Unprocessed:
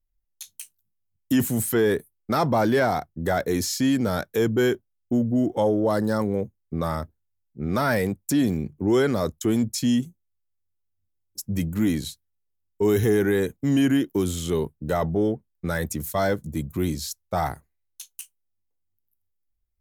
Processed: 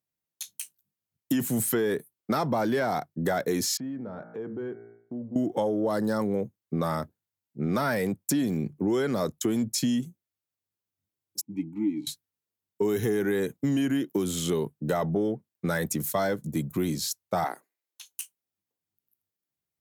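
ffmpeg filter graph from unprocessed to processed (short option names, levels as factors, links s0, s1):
-filter_complex "[0:a]asettb=1/sr,asplit=3[s0][s1][s2];[s0]atrim=end=3.774[s3];[s1]atrim=start=3.77:end=5.36,asetpts=PTS-STARTPTS,afade=t=in:d=0.004:c=qsin,afade=t=out:st=1.586:d=0.004:c=qsin,lowpass=1200,bandreject=f=57.19:t=h:w=4,bandreject=f=114.38:t=h:w=4,bandreject=f=171.57:t=h:w=4,bandreject=f=228.76:t=h:w=4,bandreject=f=285.95:t=h:w=4,bandreject=f=343.14:t=h:w=4,bandreject=f=400.33:t=h:w=4,bandreject=f=457.52:t=h:w=4,bandreject=f=514.71:t=h:w=4,bandreject=f=571.9:t=h:w=4,bandreject=f=629.09:t=h:w=4,bandreject=f=686.28:t=h:w=4,bandreject=f=743.47:t=h:w=4,bandreject=f=800.66:t=h:w=4,bandreject=f=857.85:t=h:w=4,bandreject=f=915.04:t=h:w=4,bandreject=f=972.23:t=h:w=4,bandreject=f=1029.42:t=h:w=4,bandreject=f=1086.61:t=h:w=4,bandreject=f=1143.8:t=h:w=4,bandreject=f=1200.99:t=h:w=4,bandreject=f=1258.18:t=h:w=4,bandreject=f=1315.37:t=h:w=4,bandreject=f=1372.56:t=h:w=4,bandreject=f=1429.75:t=h:w=4,bandreject=f=1486.94:t=h:w=4,bandreject=f=1544.13:t=h:w=4,bandreject=f=1601.32:t=h:w=4,bandreject=f=1658.51:t=h:w=4,bandreject=f=1715.7:t=h:w=4,bandreject=f=1772.89:t=h:w=4,bandreject=f=1830.08:t=h:w=4,bandreject=f=1887.27:t=h:w=4,bandreject=f=1944.46:t=h:w=4,bandreject=f=2001.65:t=h:w=4,bandreject=f=2058.84:t=h:w=4,bandreject=f=2116.03:t=h:w=4,bandreject=f=2173.22:t=h:w=4,bandreject=f=2230.41:t=h:w=4,acompressor=threshold=0.00447:ratio=2:attack=3.2:release=140:knee=1:detection=peak[s4];[s2]atrim=start=5.356[s5];[s3][s4]acrossfade=d=0.004:c1=hsin:c2=qsin[s6];[s6][s5]acrossfade=d=0.004:c1=qsin:c2=hsin,asettb=1/sr,asplit=3[s7][s8][s9];[s7]atrim=end=11.414[s10];[s8]atrim=start=11.41:end=12.07,asetpts=PTS-STARTPTS,afade=t=in:d=0.004:c=qsin,afade=t=out:st=0.656:d=0.004:c=qsin,asplit=3[s11][s12][s13];[s11]bandpass=f=300:t=q:w=8,volume=1[s14];[s12]bandpass=f=870:t=q:w=8,volume=0.501[s15];[s13]bandpass=f=2240:t=q:w=8,volume=0.355[s16];[s14][s15][s16]amix=inputs=3:normalize=0,lowshelf=f=150:g=9[s17];[s9]atrim=start=12.066[s18];[s10][s17]acrossfade=d=0.004:c1=hsin:c2=qsin[s19];[s19][s18]acrossfade=d=0.004:c1=qsin:c2=hsin,asettb=1/sr,asplit=3[s20][s21][s22];[s20]atrim=end=17.444[s23];[s21]atrim=start=17.44:end=18.06,asetpts=PTS-STARTPTS,afade=t=in:d=0.004:c=qsin,afade=t=out:st=0.616:d=0.004:c=qsin,highpass=f=290:w=0.5412,highpass=f=290:w=1.3066,acrossover=split=4500[s24][s25];[s25]acompressor=threshold=0.00398:ratio=4:attack=1:release=60[s26];[s24][s26]amix=inputs=2:normalize=0[s27];[s22]atrim=start=18.056[s28];[s23][s27]acrossfade=d=0.004:c1=hsin:c2=qsin[s29];[s29][s28]acrossfade=d=0.004:c1=qsin:c2=hsin,highpass=f=120:w=0.5412,highpass=f=120:w=1.3066,acompressor=threshold=0.0562:ratio=6,volume=1.26"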